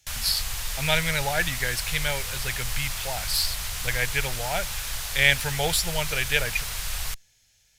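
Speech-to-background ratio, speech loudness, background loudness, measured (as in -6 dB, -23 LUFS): 4.0 dB, -26.5 LUFS, -30.5 LUFS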